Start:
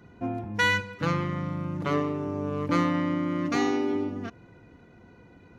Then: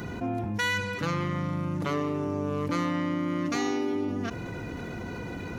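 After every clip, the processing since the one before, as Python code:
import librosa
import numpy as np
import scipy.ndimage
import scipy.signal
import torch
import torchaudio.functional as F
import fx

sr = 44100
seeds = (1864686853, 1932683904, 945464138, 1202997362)

y = fx.high_shelf(x, sr, hz=4700.0, db=9.0)
y = fx.env_flatten(y, sr, amount_pct=70)
y = F.gain(torch.from_numpy(y), -6.5).numpy()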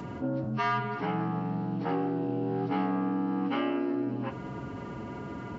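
y = fx.partial_stretch(x, sr, pct=76)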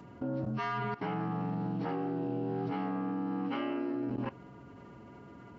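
y = fx.level_steps(x, sr, step_db=17)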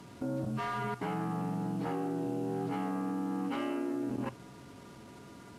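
y = fx.delta_mod(x, sr, bps=64000, step_db=-51.0)
y = fx.hum_notches(y, sr, base_hz=60, count=2)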